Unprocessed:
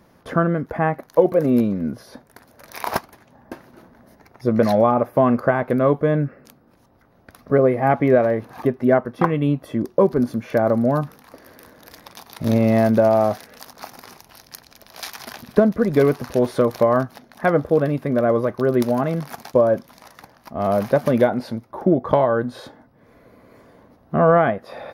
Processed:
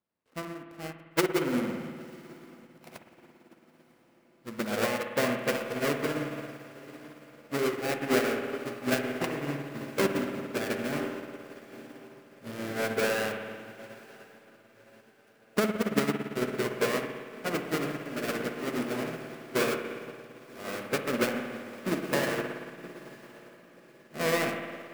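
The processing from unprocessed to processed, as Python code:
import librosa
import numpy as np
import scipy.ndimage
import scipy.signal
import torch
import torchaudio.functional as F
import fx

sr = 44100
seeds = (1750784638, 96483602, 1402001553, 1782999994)

p1 = fx.dead_time(x, sr, dead_ms=0.29)
p2 = fx.tilt_eq(p1, sr, slope=2.5)
p3 = fx.rev_spring(p2, sr, rt60_s=3.7, pass_ms=(56,), chirp_ms=20, drr_db=-1.0)
p4 = fx.formant_shift(p3, sr, semitones=-3)
p5 = fx.high_shelf(p4, sr, hz=4000.0, db=-8.0)
p6 = p5 + fx.echo_diffused(p5, sr, ms=1009, feedback_pct=71, wet_db=-9.0, dry=0)
p7 = fx.upward_expand(p6, sr, threshold_db=-30.0, expansion=2.5)
y = F.gain(torch.from_numpy(p7), -7.0).numpy()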